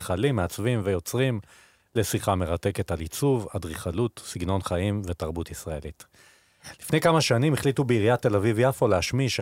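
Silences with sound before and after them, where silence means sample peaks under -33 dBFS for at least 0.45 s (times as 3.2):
1.4–1.96
6.02–6.66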